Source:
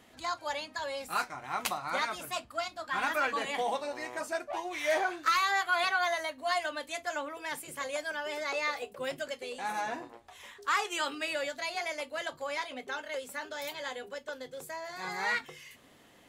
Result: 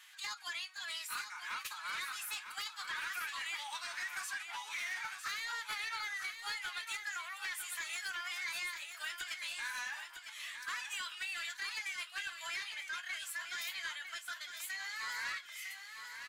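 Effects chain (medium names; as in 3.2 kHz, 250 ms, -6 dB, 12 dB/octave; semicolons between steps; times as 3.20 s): high-pass 1.4 kHz 24 dB/octave; compression 12:1, threshold -40 dBFS, peak gain reduction 14 dB; formant-preserving pitch shift +3 st; saturation -39.5 dBFS, distortion -15 dB; feedback delay 954 ms, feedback 32%, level -8 dB; attacks held to a fixed rise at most 340 dB/s; trim +5.5 dB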